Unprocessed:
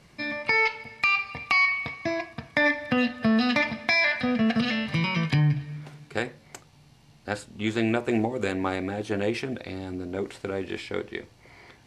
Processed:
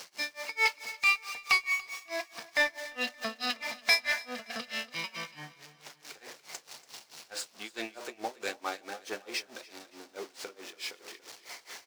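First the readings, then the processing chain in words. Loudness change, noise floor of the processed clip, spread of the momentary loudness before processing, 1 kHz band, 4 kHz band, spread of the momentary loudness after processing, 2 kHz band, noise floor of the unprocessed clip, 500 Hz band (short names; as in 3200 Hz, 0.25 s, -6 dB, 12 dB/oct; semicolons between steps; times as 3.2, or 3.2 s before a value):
-6.0 dB, -62 dBFS, 13 LU, -6.5 dB, -1.0 dB, 21 LU, -5.5 dB, -56 dBFS, -11.5 dB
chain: zero-crossing step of -31 dBFS; HPF 540 Hz 12 dB/oct; bell 5400 Hz +8 dB 0.98 oct; soft clip -15.5 dBFS, distortion -16 dB; tremolo 4.6 Hz, depth 97%; feedback echo 0.286 s, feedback 48%, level -15 dB; upward expander 1.5:1, over -41 dBFS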